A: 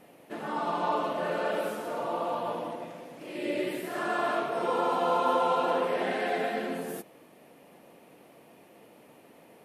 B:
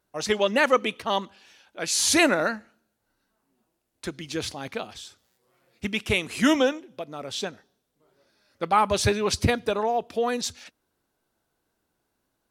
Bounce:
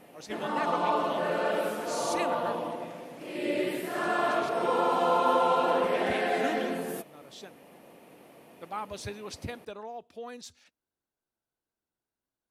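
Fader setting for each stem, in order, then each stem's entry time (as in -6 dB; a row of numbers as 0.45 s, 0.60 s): +1.5 dB, -16.0 dB; 0.00 s, 0.00 s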